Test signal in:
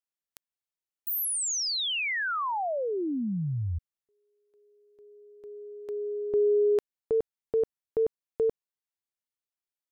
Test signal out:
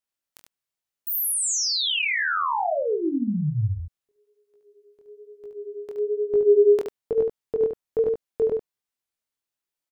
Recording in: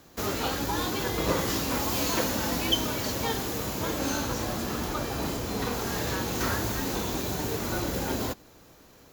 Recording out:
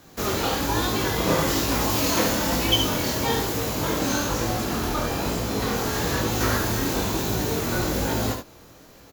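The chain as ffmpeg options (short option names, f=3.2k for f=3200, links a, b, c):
-af "aecho=1:1:19|72:0.158|0.531,flanger=delay=17.5:depth=7.9:speed=1.1,volume=7dB"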